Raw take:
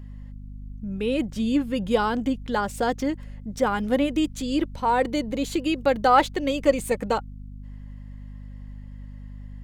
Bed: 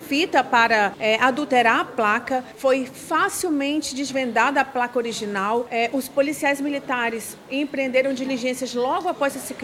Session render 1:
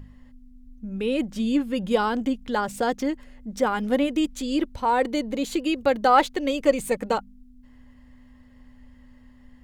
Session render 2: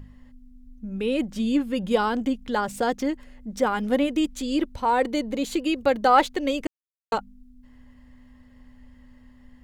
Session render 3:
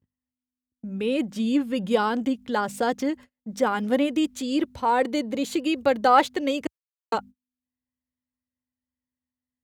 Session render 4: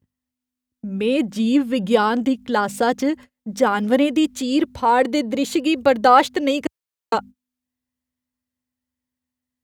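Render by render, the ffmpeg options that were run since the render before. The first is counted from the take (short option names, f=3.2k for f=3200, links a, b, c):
-af "bandreject=f=50:t=h:w=4,bandreject=f=100:t=h:w=4,bandreject=f=150:t=h:w=4,bandreject=f=200:t=h:w=4"
-filter_complex "[0:a]asplit=3[a][b][c];[a]atrim=end=6.67,asetpts=PTS-STARTPTS,afade=t=out:st=6.666:d=0.004:c=hsin[d];[b]atrim=start=6.67:end=7.12,asetpts=PTS-STARTPTS,volume=0[e];[c]atrim=start=7.12,asetpts=PTS-STARTPTS,afade=t=in:d=0.004:c=hsin[f];[d][e][f]concat=n=3:v=0:a=1"
-af "agate=range=-38dB:threshold=-38dB:ratio=16:detection=peak,highpass=f=71:w=0.5412,highpass=f=71:w=1.3066"
-af "volume=5.5dB,alimiter=limit=-3dB:level=0:latency=1"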